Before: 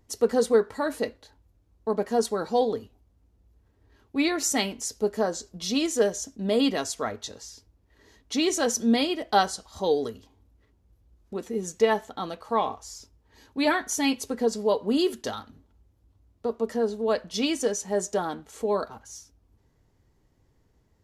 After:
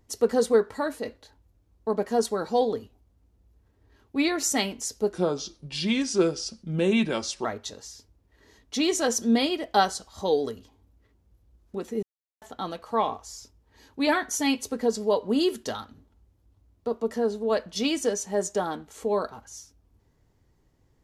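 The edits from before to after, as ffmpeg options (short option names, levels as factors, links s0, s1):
-filter_complex "[0:a]asplit=6[s0][s1][s2][s3][s4][s5];[s0]atrim=end=1.05,asetpts=PTS-STARTPTS,afade=t=out:st=0.8:d=0.25:silence=0.501187[s6];[s1]atrim=start=1.05:end=5.134,asetpts=PTS-STARTPTS,afade=t=in:d=0.004:c=hsin:silence=0.501187[s7];[s2]atrim=start=5.13:end=7.03,asetpts=PTS-STARTPTS,asetrate=36162,aresample=44100[s8];[s3]atrim=start=7.026:end=11.61,asetpts=PTS-STARTPTS,afade=t=out:st=4.58:d=0.004:c=hsin[s9];[s4]atrim=start=11.61:end=12,asetpts=PTS-STARTPTS,volume=0[s10];[s5]atrim=start=12,asetpts=PTS-STARTPTS,afade=t=in:d=0.004:c=hsin[s11];[s6][s7]concat=n=2:v=0:a=1[s12];[s12][s8]acrossfade=d=0.004:c1=hsin:c2=hsin[s13];[s9][s10][s11]concat=n=3:v=0:a=1[s14];[s13][s14]acrossfade=d=0.004:c1=hsin:c2=hsin"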